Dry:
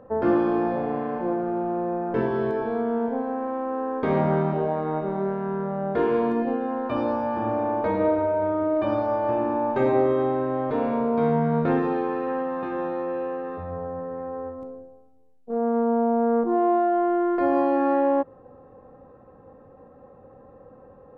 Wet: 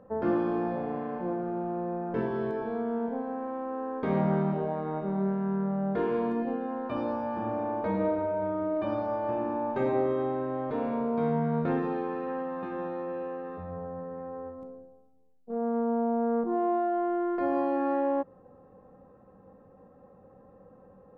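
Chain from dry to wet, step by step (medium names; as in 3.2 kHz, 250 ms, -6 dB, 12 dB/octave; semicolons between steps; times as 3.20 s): peaking EQ 190 Hz +10.5 dB 0.22 oct; trim -6.5 dB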